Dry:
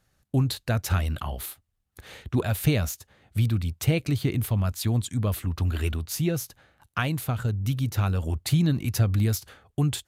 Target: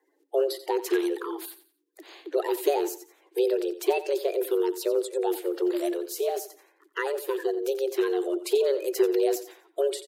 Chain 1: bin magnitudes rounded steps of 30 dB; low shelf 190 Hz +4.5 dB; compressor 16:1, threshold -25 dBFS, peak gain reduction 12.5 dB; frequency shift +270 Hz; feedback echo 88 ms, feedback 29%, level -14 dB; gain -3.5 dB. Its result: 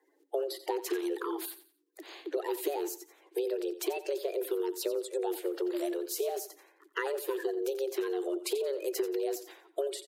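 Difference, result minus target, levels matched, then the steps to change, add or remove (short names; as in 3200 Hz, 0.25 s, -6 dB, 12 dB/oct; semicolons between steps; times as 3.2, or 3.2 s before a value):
compressor: peak gain reduction +12.5 dB
remove: compressor 16:1, threshold -25 dBFS, peak gain reduction 12.5 dB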